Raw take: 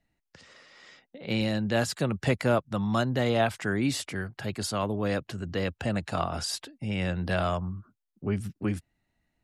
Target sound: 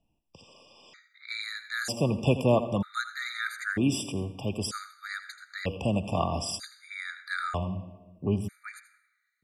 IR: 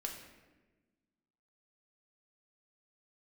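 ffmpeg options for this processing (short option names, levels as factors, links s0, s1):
-filter_complex "[0:a]asplit=2[s0][s1];[1:a]atrim=start_sample=2205,adelay=82[s2];[s1][s2]afir=irnorm=-1:irlink=0,volume=0.316[s3];[s0][s3]amix=inputs=2:normalize=0,afftfilt=real='re*gt(sin(2*PI*0.53*pts/sr)*(1-2*mod(floor(b*sr/1024/1200),2)),0)':imag='im*gt(sin(2*PI*0.53*pts/sr)*(1-2*mod(floor(b*sr/1024/1200),2)),0)':win_size=1024:overlap=0.75,volume=1.26"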